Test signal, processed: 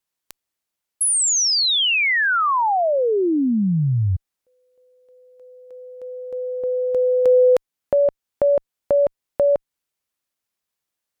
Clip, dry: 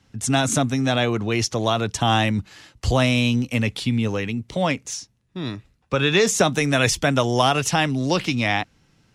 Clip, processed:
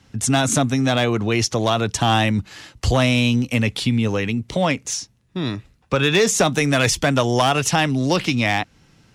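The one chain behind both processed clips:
in parallel at 0 dB: downward compressor 16 to 1, threshold −27 dBFS
on the sum: asymmetric clip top −9 dBFS, bottom −8.5 dBFS

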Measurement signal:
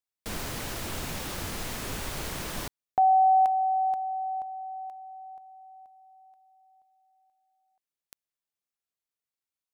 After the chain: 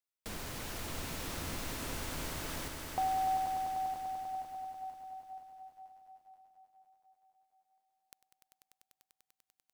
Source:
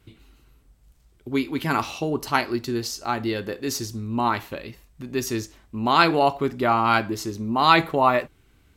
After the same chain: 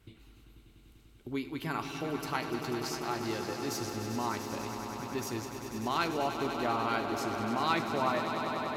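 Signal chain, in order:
downward compressor 1.5 to 1, threshold −41 dBFS
on a send: echo that builds up and dies away 98 ms, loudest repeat 5, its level −10.5 dB
on the sum: level −4 dB

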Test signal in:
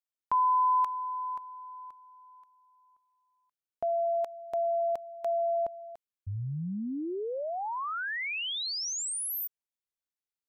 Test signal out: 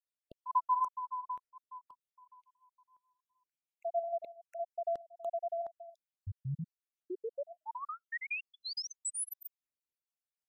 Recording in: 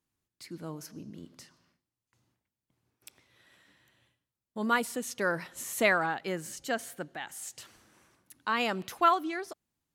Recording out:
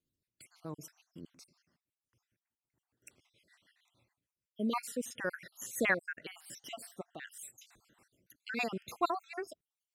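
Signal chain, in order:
time-frequency cells dropped at random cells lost 59%
rotating-speaker cabinet horn 6.7 Hz

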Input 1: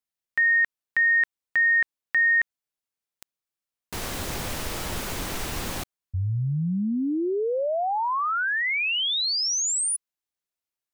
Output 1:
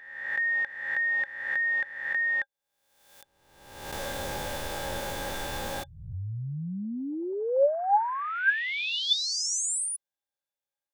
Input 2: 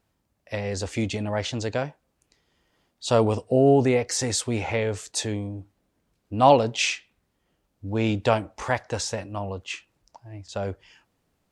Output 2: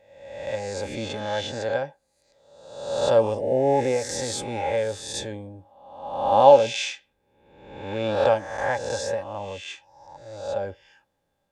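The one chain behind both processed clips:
peak hold with a rise ahead of every peak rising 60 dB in 1.00 s
hollow resonant body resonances 560/820/1,600/3,500 Hz, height 15 dB, ringing for 55 ms
level −8.5 dB

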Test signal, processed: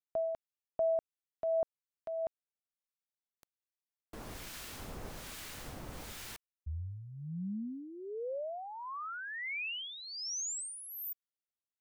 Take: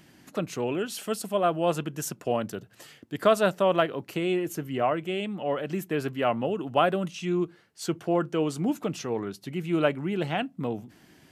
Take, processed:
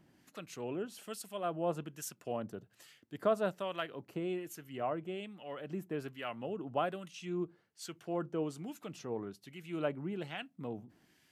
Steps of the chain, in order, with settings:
two-band tremolo in antiphase 1.2 Hz, depth 70%, crossover 1,300 Hz
level −8.5 dB

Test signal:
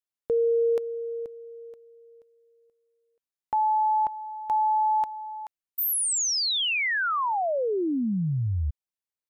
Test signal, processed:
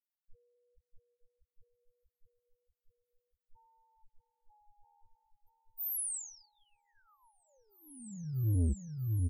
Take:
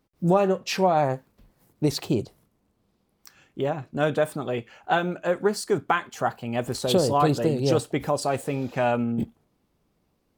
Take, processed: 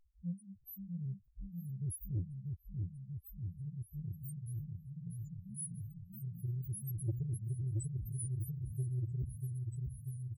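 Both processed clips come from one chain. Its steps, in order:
reverb reduction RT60 1.2 s
inverse Chebyshev band-stop filter 350–4,100 Hz, stop band 60 dB
low shelf with overshoot 340 Hz −8 dB, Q 1.5
comb filter 3.2 ms, depth 53%
in parallel at −2.5 dB: downward compressor, threshold −55 dBFS
on the sum: pitch vibrato 0.35 Hz 80 cents
hard clipping −36.5 dBFS
spectral peaks only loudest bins 1
on a send: echo whose low-pass opens from repeat to repeat 640 ms, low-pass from 400 Hz, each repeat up 2 octaves, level −3 dB
on the sum: saturating transformer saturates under 150 Hz
level +17.5 dB

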